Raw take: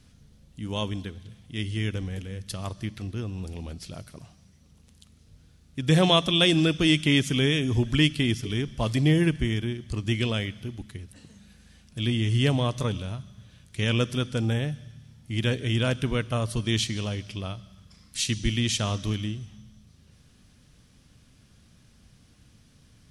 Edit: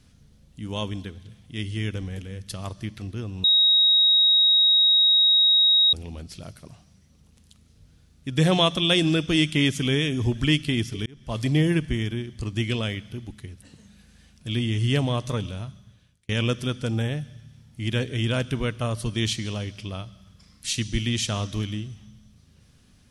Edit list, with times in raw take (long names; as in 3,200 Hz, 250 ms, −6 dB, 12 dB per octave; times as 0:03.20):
0:03.44: insert tone 3,790 Hz −14.5 dBFS 2.49 s
0:08.57–0:08.96: fade in
0:13.19–0:13.80: fade out